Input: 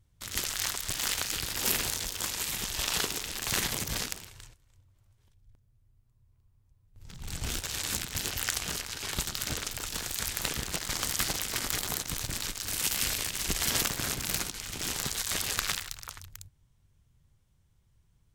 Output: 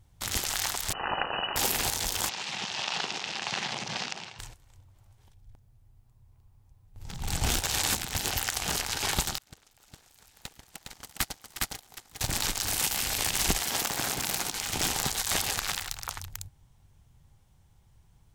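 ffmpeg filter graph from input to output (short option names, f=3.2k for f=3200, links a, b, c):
-filter_complex "[0:a]asettb=1/sr,asplit=3[a][b][c];[a]atrim=end=0.934[d];[b]atrim=start=0.93:end=1.56,asetpts=PTS-STARTPTS,afade=t=in:d=0.004:c=qsin,afade=t=out:st=0.626:d=0.004:c=qsin,asuperstop=centerf=790:order=8:qfactor=2.4,lowpass=f=2.6k:t=q:w=0.5098,lowpass=f=2.6k:t=q:w=0.6013,lowpass=f=2.6k:t=q:w=0.9,lowpass=f=2.6k:t=q:w=2.563,afreqshift=-3000[e];[c]atrim=start=1.556[f];[d][e]acrossfade=d=0.004:c1=hsin:c2=qsin[g];[g][f]acrossfade=d=0.004:c1=qsin:c2=hsin,asettb=1/sr,asplit=3[h][i][j];[h]atrim=end=2.294[k];[i]atrim=start=2.29:end=4.39,asetpts=PTS-STARTPTS,afade=t=in:d=0.004:c=qsin,afade=t=out:st=2.096:d=0.004:c=qsin,acompressor=threshold=-35dB:ratio=3:attack=3.2:release=140:knee=1:detection=peak,highpass=f=140:w=0.5412,highpass=f=140:w=1.3066,equalizer=f=290:t=q:w=4:g=-7,equalizer=f=450:t=q:w=4:g=-4,equalizer=f=2.7k:t=q:w=4:g=4,lowpass=f=5.7k:w=0.5412,lowpass=f=5.7k:w=1.3066[l];[j]atrim=start=4.386[m];[k][l]acrossfade=d=0.004:c1=hsin:c2=qsin[n];[n][m]acrossfade=d=0.004:c1=qsin:c2=hsin,asettb=1/sr,asplit=3[o][p][q];[o]atrim=end=9.384[r];[p]atrim=start=9.38:end=12.21,asetpts=PTS-STARTPTS,afade=t=in:d=0.004:c=qsin,afade=t=out:st=2.826:d=0.004:c=qsin,agate=range=-33dB:threshold=-29dB:ratio=16:release=100:detection=peak,aecho=1:1:410:0.708,atrim=end_sample=124803[s];[q]atrim=start=12.206[t];[r][s]acrossfade=d=0.004:c1=hsin:c2=qsin[u];[u][t]acrossfade=d=0.004:c1=qsin:c2=hsin,asettb=1/sr,asplit=3[v][w][x];[v]atrim=end=13.584[y];[w]atrim=start=13.58:end=14.73,asetpts=PTS-STARTPTS,afade=t=in:d=0.004:c=qsin,afade=t=out:st=1.146:d=0.004:c=qsin,lowshelf=f=110:g=-11,acompressor=threshold=-33dB:ratio=3:attack=3.2:release=140:knee=1:detection=peak,acrusher=bits=4:mode=log:mix=0:aa=0.000001[z];[x]atrim=start=14.726[aa];[y][z]acrossfade=d=0.004:c1=hsin:c2=qsin[ab];[ab][aa]acrossfade=d=0.004:c1=qsin:c2=hsin,equalizer=f=800:t=o:w=0.48:g=9,alimiter=limit=-17dB:level=0:latency=1:release=294,volume=6.5dB"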